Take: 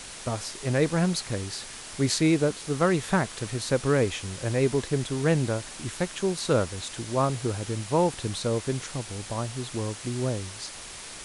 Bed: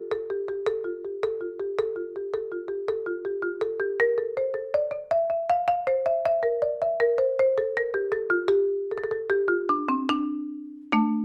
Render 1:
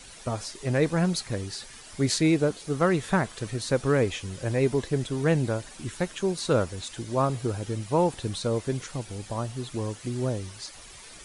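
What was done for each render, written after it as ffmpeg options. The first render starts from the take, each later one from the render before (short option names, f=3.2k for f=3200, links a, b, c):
-af "afftdn=nr=10:nf=-42"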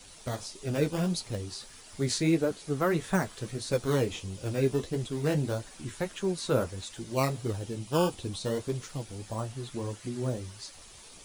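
-filter_complex "[0:a]acrossover=split=570|1900[a][b][c];[b]acrusher=samples=12:mix=1:aa=0.000001:lfo=1:lforange=19.2:lforate=0.28[d];[a][d][c]amix=inputs=3:normalize=0,flanger=delay=9.3:depth=6.1:regen=-33:speed=1.6:shape=triangular"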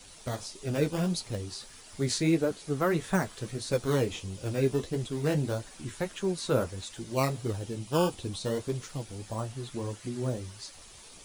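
-af anull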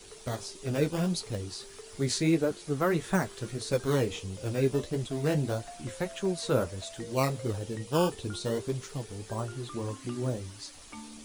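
-filter_complex "[1:a]volume=-23.5dB[a];[0:a][a]amix=inputs=2:normalize=0"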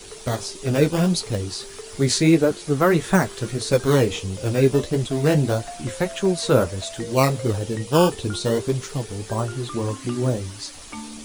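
-af "volume=9.5dB"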